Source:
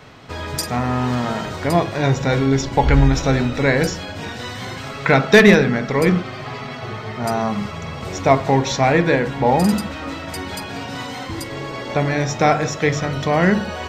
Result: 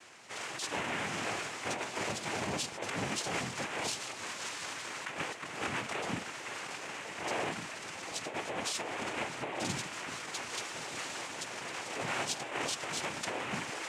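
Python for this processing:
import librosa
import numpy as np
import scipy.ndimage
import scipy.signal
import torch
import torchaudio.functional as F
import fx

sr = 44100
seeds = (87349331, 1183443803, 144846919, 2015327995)

y = fx.highpass(x, sr, hz=1300.0, slope=6)
y = fx.over_compress(y, sr, threshold_db=-27.0, ratio=-1.0)
y = fx.noise_vocoder(y, sr, seeds[0], bands=4)
y = y * librosa.db_to_amplitude(-8.5)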